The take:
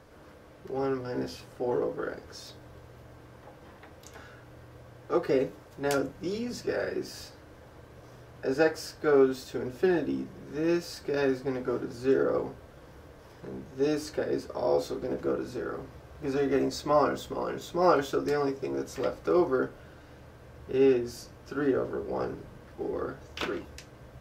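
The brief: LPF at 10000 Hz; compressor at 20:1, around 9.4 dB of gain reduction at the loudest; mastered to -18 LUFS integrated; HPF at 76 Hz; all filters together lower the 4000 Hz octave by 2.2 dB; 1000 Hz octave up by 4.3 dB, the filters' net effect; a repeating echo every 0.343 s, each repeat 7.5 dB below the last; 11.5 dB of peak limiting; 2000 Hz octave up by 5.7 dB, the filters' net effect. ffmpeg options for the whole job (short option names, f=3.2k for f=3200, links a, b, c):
-af "highpass=76,lowpass=10k,equalizer=f=1k:t=o:g=4,equalizer=f=2k:t=o:g=7,equalizer=f=4k:t=o:g=-5,acompressor=threshold=-25dB:ratio=20,alimiter=level_in=4dB:limit=-24dB:level=0:latency=1,volume=-4dB,aecho=1:1:343|686|1029|1372|1715:0.422|0.177|0.0744|0.0312|0.0131,volume=20dB"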